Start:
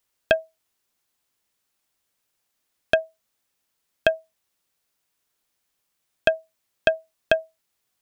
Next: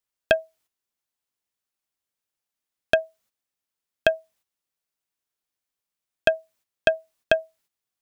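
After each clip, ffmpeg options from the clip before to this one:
-af "agate=range=-11dB:threshold=-59dB:ratio=16:detection=peak"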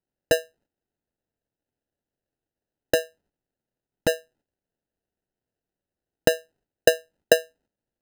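-af "bass=f=250:g=-12,treble=f=4k:g=-6,acrusher=samples=39:mix=1:aa=0.000001,volume=1.5dB"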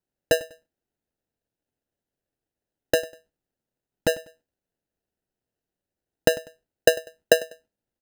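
-af "aecho=1:1:98|196:0.106|0.0318"

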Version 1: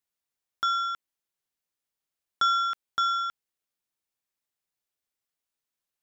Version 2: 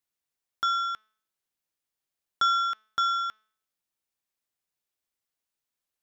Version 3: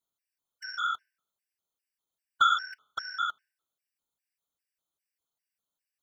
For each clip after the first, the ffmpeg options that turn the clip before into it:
-af "bandreject=f=216.8:t=h:w=4,bandreject=f=433.6:t=h:w=4,bandreject=f=650.4:t=h:w=4,bandreject=f=867.2:t=h:w=4,bandreject=f=1.084k:t=h:w=4,bandreject=f=1.3008k:t=h:w=4,bandreject=f=1.5176k:t=h:w=4,bandreject=f=1.7344k:t=h:w=4,bandreject=f=1.9512k:t=h:w=4,bandreject=f=2.168k:t=h:w=4,bandreject=f=2.3848k:t=h:w=4,bandreject=f=2.6016k:t=h:w=4,bandreject=f=2.8184k:t=h:w=4,bandreject=f=3.0352k:t=h:w=4,bandreject=f=3.252k:t=h:w=4,bandreject=f=3.4688k:t=h:w=4,bandreject=f=3.6856k:t=h:w=4,bandreject=f=3.9024k:t=h:w=4,bandreject=f=4.1192k:t=h:w=4,bandreject=f=4.336k:t=h:w=4,bandreject=f=4.5528k:t=h:w=4,bandreject=f=4.7696k:t=h:w=4,bandreject=f=4.9864k:t=h:w=4,bandreject=f=5.2032k:t=h:w=4,bandreject=f=5.42k:t=h:w=4,bandreject=f=5.6368k:t=h:w=4,bandreject=f=5.8536k:t=h:w=4,bandreject=f=6.0704k:t=h:w=4,bandreject=f=6.2872k:t=h:w=4,bandreject=f=6.504k:t=h:w=4,bandreject=f=6.7208k:t=h:w=4,bandreject=f=6.9376k:t=h:w=4,bandreject=f=7.1544k:t=h:w=4"
-af "afftfilt=real='hypot(re,im)*cos(2*PI*random(0))':imag='hypot(re,im)*sin(2*PI*random(1))':win_size=512:overlap=0.75,afftfilt=real='re*gt(sin(2*PI*2.5*pts/sr)*(1-2*mod(floor(b*sr/1024/1500),2)),0)':imag='im*gt(sin(2*PI*2.5*pts/sr)*(1-2*mod(floor(b*sr/1024/1500),2)),0)':win_size=1024:overlap=0.75,volume=6.5dB"

